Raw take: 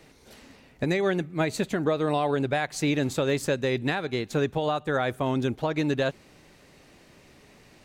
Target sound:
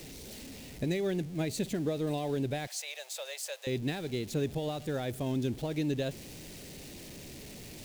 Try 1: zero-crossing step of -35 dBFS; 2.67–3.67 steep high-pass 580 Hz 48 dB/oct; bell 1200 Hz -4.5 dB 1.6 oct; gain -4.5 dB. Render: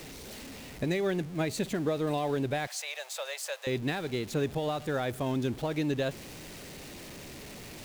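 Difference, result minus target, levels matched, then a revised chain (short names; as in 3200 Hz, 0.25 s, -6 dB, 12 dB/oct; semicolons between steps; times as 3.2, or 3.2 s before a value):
1000 Hz band +4.0 dB
zero-crossing step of -35 dBFS; 2.67–3.67 steep high-pass 580 Hz 48 dB/oct; bell 1200 Hz -14.5 dB 1.6 oct; gain -4.5 dB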